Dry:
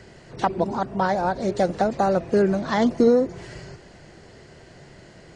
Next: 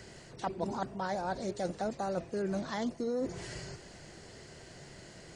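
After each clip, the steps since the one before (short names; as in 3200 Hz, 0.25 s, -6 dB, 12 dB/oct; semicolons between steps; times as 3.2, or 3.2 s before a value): high shelf 4900 Hz +12 dB; reverse; compressor 10:1, threshold -26 dBFS, peak gain reduction 14 dB; reverse; gain -5 dB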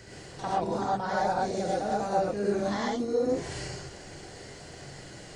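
reverse echo 48 ms -14.5 dB; non-linear reverb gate 0.15 s rising, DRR -5 dB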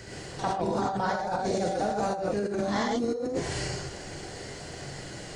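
negative-ratio compressor -31 dBFS, ratio -1; gain +2.5 dB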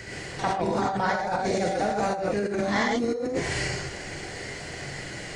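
bell 2100 Hz +8.5 dB 0.71 oct; gain +2 dB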